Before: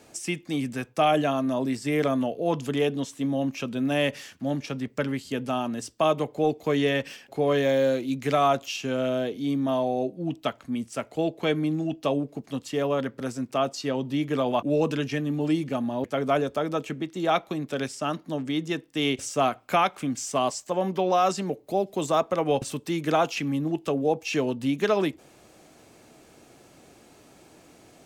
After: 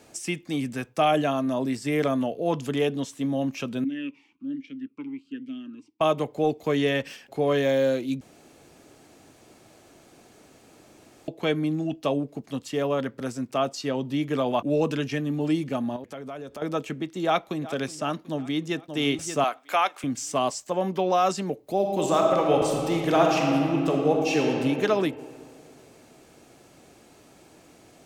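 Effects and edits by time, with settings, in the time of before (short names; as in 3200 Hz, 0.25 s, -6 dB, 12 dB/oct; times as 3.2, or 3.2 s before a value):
3.84–6.01 vowel sweep i-u 1.2 Hz
8.21–11.28 room tone
15.96–16.62 compressor 4:1, threshold -36 dBFS
17.24–17.65 echo throw 0.37 s, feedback 60%, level -17 dB
18.3–18.82 echo throw 0.58 s, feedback 25%, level -8 dB
19.44–20.04 HPF 550 Hz
21.75–24.5 reverb throw, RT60 2.6 s, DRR 0 dB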